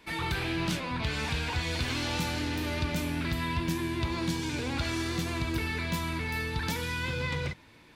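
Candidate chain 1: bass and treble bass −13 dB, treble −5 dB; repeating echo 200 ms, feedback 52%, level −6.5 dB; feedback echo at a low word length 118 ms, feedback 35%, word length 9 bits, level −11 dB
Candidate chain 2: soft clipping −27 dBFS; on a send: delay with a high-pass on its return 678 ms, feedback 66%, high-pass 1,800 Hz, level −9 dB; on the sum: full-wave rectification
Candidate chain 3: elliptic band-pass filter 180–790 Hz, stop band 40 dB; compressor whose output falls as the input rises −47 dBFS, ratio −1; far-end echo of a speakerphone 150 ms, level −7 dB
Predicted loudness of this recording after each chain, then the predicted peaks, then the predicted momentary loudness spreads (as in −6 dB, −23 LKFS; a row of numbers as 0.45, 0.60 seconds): −33.0, −38.0, −46.5 LKFS; −19.5, −24.5, −28.5 dBFS; 2, 1, 6 LU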